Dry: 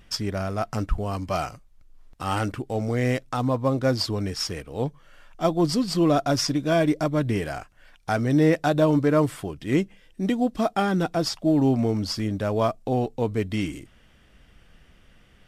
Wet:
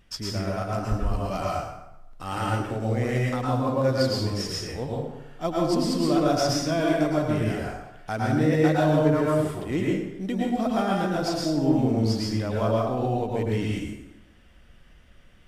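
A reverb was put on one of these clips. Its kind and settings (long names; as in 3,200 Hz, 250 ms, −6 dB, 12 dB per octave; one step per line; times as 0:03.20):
dense smooth reverb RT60 0.9 s, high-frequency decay 0.7×, pre-delay 95 ms, DRR −4 dB
level −6 dB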